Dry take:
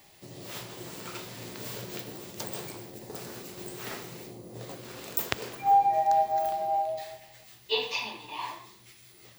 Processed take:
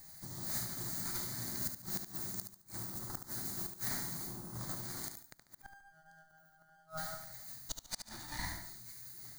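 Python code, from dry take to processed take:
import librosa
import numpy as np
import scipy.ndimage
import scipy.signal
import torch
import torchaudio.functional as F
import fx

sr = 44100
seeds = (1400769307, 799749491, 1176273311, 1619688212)

p1 = fx.lower_of_two(x, sr, delay_ms=0.46)
p2 = fx.high_shelf(p1, sr, hz=4100.0, db=6.5)
p3 = fx.fixed_phaser(p2, sr, hz=1100.0, stages=4)
p4 = fx.gate_flip(p3, sr, shuts_db=-26.0, range_db=-34)
p5 = p4 + fx.echo_feedback(p4, sr, ms=72, feedback_pct=34, wet_db=-7.5, dry=0)
y = p5 * 10.0 ** (1.5 / 20.0)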